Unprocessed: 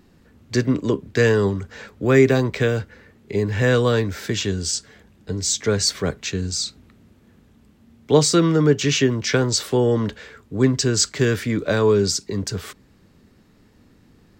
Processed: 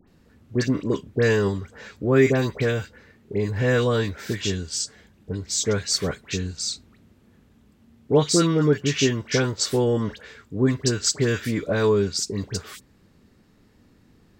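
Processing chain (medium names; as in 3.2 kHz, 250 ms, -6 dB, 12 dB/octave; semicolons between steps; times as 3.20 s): phase dispersion highs, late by 78 ms, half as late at 1.6 kHz; trim -3 dB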